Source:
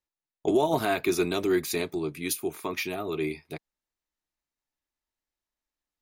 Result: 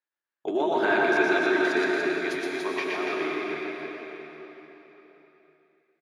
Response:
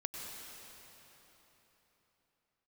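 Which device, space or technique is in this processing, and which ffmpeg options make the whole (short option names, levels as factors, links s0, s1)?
station announcement: -filter_complex "[0:a]highpass=320,lowpass=3700,equalizer=f=1600:t=o:w=0.46:g=11.5,aecho=1:1:119.5|288.6:0.708|0.631[s0];[1:a]atrim=start_sample=2205[s1];[s0][s1]afir=irnorm=-1:irlink=0"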